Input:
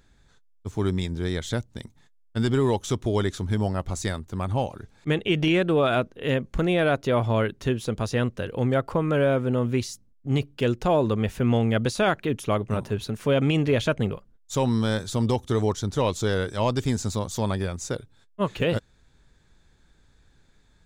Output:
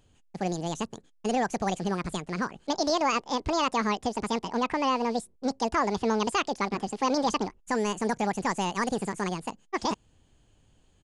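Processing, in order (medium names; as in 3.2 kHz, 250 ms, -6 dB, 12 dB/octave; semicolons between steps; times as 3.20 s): rattle on loud lows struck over -30 dBFS, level -35 dBFS; wide varispeed 1.89×; resampled via 22.05 kHz; trim -4 dB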